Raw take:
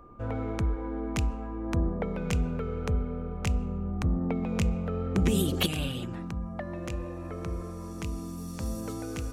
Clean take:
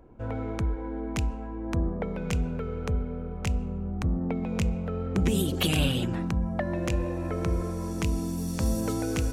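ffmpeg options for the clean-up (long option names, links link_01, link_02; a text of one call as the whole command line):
ffmpeg -i in.wav -af "bandreject=frequency=1200:width=30,asetnsamples=nb_out_samples=441:pad=0,asendcmd='5.66 volume volume 7dB',volume=0dB" out.wav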